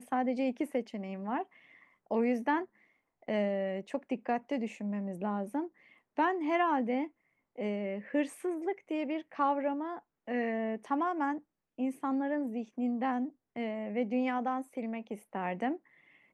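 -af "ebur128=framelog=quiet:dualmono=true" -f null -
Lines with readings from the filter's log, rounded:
Integrated loudness:
  I:         -31.1 LUFS
  Threshold: -41.5 LUFS
Loudness range:
  LRA:         1.8 LU
  Threshold: -51.4 LUFS
  LRA low:   -32.2 LUFS
  LRA high:  -30.5 LUFS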